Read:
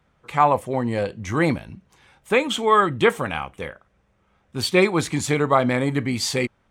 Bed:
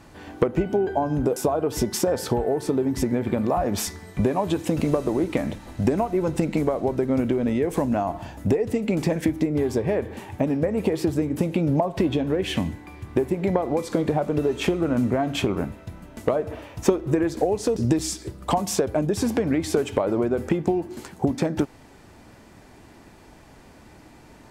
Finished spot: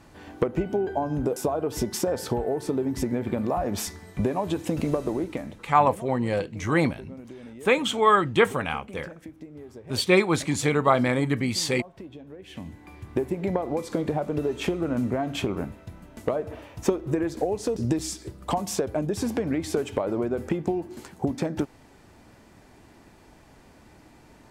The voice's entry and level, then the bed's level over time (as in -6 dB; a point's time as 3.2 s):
5.35 s, -2.0 dB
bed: 5.1 s -3.5 dB
6.07 s -20 dB
12.41 s -20 dB
12.89 s -4 dB